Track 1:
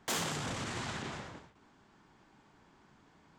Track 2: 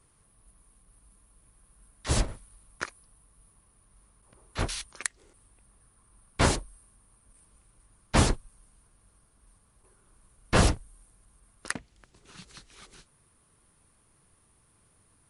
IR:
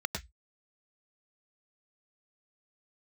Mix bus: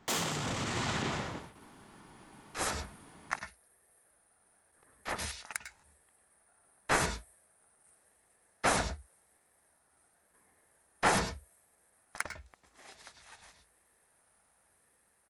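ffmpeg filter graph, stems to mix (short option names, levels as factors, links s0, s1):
-filter_complex "[0:a]bandreject=f=1600:w=18,volume=1.19[s0];[1:a]highpass=f=720:p=1,asoftclip=type=hard:threshold=0.158,aeval=exprs='val(0)*sin(2*PI*500*n/s+500*0.35/0.9*sin(2*PI*0.9*n/s))':c=same,adelay=500,volume=0.562,asplit=2[s1][s2];[s2]volume=0.398[s3];[2:a]atrim=start_sample=2205[s4];[s3][s4]afir=irnorm=-1:irlink=0[s5];[s0][s1][s5]amix=inputs=3:normalize=0,dynaudnorm=f=330:g=5:m=2.11"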